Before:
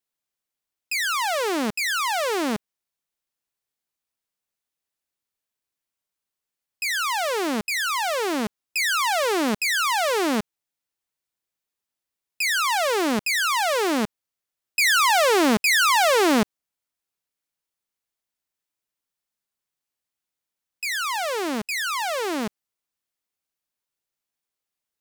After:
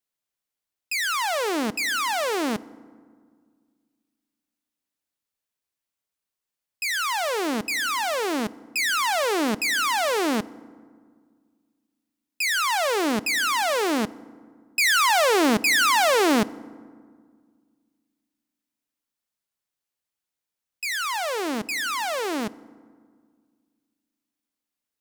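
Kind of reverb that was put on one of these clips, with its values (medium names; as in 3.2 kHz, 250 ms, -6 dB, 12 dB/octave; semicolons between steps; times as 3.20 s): FDN reverb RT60 1.8 s, low-frequency decay 1.35×, high-frequency decay 0.5×, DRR 18.5 dB; trim -1 dB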